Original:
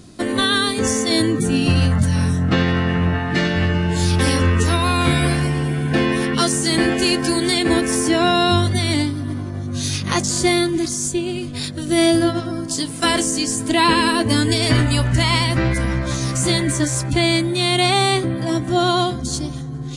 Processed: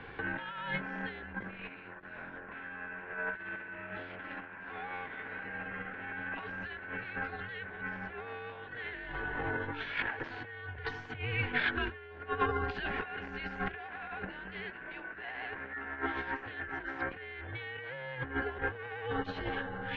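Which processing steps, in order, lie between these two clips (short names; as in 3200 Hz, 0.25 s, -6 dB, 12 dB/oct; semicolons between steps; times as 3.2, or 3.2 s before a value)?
one-sided fold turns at -15 dBFS; bell 1800 Hz +11 dB 0.56 oct; notch 1500 Hz, Q 7.3; negative-ratio compressor -26 dBFS, ratio -0.5; mistuned SSB -250 Hz 470–2900 Hz; gain -3 dB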